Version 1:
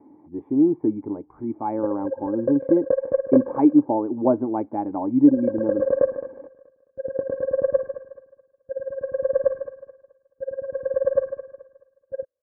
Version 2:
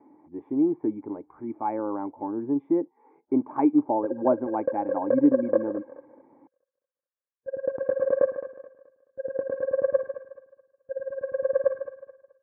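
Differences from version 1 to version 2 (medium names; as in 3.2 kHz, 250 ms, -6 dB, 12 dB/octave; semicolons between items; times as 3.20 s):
background: entry +2.20 s; master: add tilt EQ +3 dB/octave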